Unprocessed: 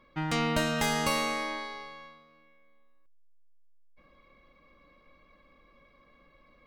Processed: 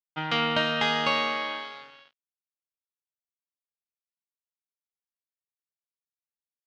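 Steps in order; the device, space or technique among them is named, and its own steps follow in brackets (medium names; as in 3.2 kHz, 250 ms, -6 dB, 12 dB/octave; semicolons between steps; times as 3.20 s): blown loudspeaker (crossover distortion -44 dBFS; cabinet simulation 180–4400 Hz, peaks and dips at 190 Hz -5 dB, 340 Hz -9 dB, 1.4 kHz +4 dB, 3.1 kHz +8 dB); trim +4 dB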